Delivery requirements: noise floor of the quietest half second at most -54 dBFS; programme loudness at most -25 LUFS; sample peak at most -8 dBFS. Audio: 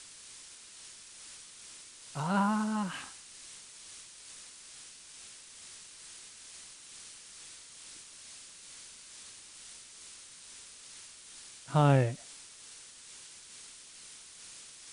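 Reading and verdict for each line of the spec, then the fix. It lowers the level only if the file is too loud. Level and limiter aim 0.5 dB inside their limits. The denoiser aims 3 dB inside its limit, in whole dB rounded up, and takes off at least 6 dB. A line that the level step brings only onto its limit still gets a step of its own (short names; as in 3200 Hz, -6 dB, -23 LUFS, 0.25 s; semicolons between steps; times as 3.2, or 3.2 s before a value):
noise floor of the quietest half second -52 dBFS: fail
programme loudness -38.0 LUFS: OK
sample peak -10.5 dBFS: OK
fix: denoiser 6 dB, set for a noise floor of -52 dBFS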